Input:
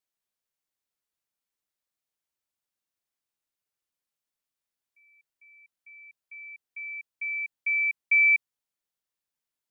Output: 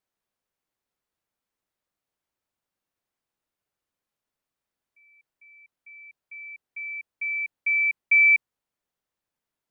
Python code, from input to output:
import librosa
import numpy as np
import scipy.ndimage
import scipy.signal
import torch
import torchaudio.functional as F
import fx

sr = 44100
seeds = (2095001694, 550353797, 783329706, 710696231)

y = fx.high_shelf(x, sr, hz=2300.0, db=-11.0)
y = F.gain(torch.from_numpy(y), 8.5).numpy()